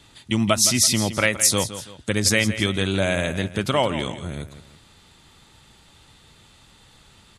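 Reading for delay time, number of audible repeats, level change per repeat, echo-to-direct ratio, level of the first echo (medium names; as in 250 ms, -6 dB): 166 ms, 2, -8.0 dB, -12.0 dB, -12.5 dB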